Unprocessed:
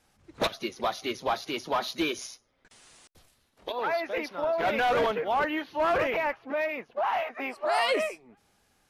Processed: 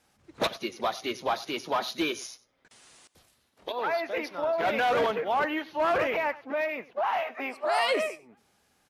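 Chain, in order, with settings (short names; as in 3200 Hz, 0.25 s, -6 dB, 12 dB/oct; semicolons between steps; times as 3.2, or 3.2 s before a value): HPF 94 Hz 6 dB/oct; on a send: echo 95 ms -19.5 dB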